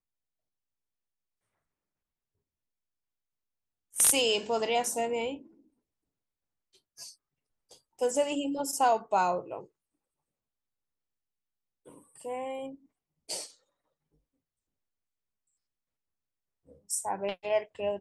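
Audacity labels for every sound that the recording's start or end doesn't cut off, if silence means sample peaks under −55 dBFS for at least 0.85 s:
3.930000	5.600000	sound
6.740000	9.670000	sound
11.860000	13.570000	sound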